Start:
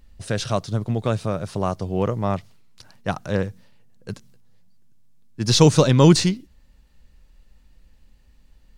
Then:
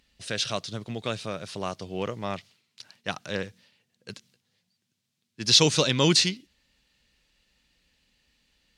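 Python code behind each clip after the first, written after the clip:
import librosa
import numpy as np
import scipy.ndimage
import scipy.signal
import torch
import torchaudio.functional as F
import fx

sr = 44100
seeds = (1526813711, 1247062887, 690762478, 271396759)

y = fx.weighting(x, sr, curve='D')
y = F.gain(torch.from_numpy(y), -7.5).numpy()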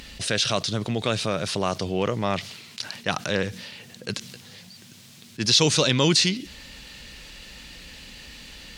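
y = fx.env_flatten(x, sr, amount_pct=50)
y = F.gain(torch.from_numpy(y), -1.5).numpy()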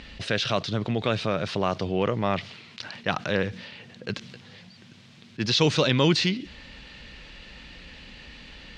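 y = scipy.signal.sosfilt(scipy.signal.butter(2, 3300.0, 'lowpass', fs=sr, output='sos'), x)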